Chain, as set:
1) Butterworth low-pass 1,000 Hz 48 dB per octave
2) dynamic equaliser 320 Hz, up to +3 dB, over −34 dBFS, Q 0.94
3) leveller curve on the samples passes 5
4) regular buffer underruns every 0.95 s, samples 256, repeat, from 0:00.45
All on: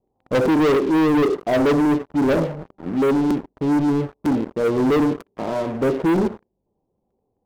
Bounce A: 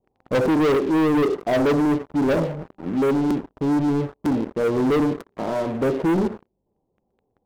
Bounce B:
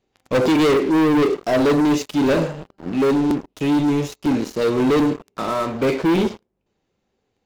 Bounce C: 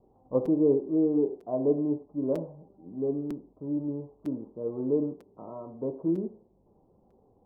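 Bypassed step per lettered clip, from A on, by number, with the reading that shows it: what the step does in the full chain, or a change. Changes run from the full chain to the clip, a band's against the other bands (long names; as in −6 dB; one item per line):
2, change in integrated loudness −1.5 LU
1, 4 kHz band +5.0 dB
3, change in crest factor +10.0 dB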